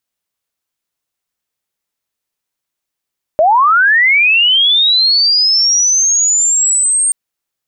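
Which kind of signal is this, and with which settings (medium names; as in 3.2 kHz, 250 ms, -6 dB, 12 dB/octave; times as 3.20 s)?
sweep linear 590 Hz -> 8.7 kHz -6 dBFS -> -9.5 dBFS 3.73 s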